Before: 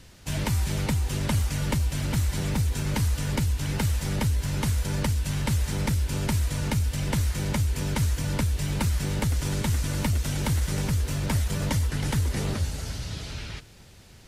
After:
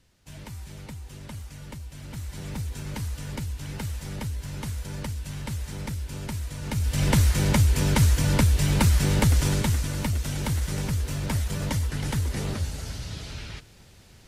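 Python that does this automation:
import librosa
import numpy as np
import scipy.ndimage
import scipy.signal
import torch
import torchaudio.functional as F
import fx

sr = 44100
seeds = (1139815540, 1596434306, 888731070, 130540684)

y = fx.gain(x, sr, db=fx.line((1.89, -14.0), (2.57, -7.0), (6.6, -7.0), (7.03, 5.5), (9.4, 5.5), (9.92, -1.5)))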